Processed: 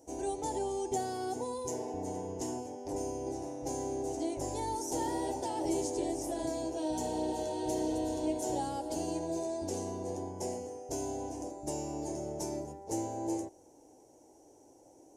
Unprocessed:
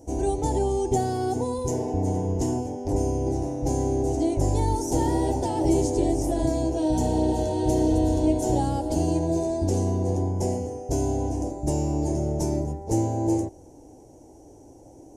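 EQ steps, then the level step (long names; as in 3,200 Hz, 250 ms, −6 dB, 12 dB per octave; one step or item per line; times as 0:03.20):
low-shelf EQ 140 Hz −10 dB
low-shelf EQ 300 Hz −10 dB
parametric band 710 Hz −2 dB 0.29 octaves
−5.0 dB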